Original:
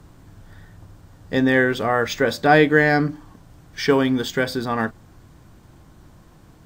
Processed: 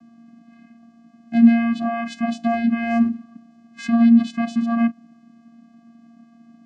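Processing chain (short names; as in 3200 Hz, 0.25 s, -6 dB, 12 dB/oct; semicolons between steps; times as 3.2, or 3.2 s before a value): limiter -11 dBFS, peak gain reduction 9 dB; vocoder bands 8, square 232 Hz; gain +5 dB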